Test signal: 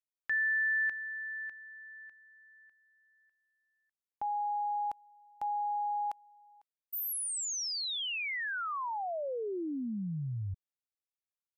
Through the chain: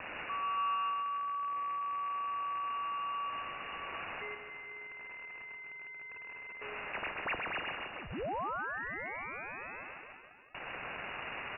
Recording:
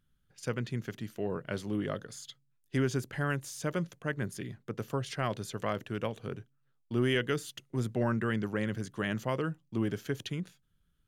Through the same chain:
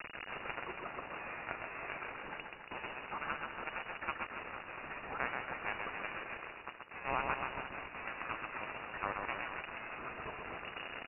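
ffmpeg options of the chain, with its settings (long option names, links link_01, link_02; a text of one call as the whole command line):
ffmpeg -i in.wav -filter_complex "[0:a]aeval=exprs='val(0)+0.5*0.0211*sgn(val(0))':channel_layout=same,anlmdn=0.0158,highpass=52,aderivative,asplit=2[link_01][link_02];[link_02]acompressor=threshold=-52dB:ratio=6:attack=12:release=97:knee=1:detection=peak,volume=-2dB[link_03];[link_01][link_03]amix=inputs=2:normalize=0,aeval=exprs='val(0)+0.000708*(sin(2*PI*50*n/s)+sin(2*PI*2*50*n/s)/2+sin(2*PI*3*50*n/s)/3+sin(2*PI*4*50*n/s)/4+sin(2*PI*5*50*n/s)/5)':channel_layout=same,acontrast=53,acrusher=bits=4:mix=0:aa=0.000001,asoftclip=type=tanh:threshold=-35dB,aecho=1:1:130|279.5|451.4|649.1|876.5:0.631|0.398|0.251|0.158|0.1,lowpass=frequency=2500:width_type=q:width=0.5098,lowpass=frequency=2500:width_type=q:width=0.6013,lowpass=frequency=2500:width_type=q:width=0.9,lowpass=frequency=2500:width_type=q:width=2.563,afreqshift=-2900,volume=15.5dB" out.wav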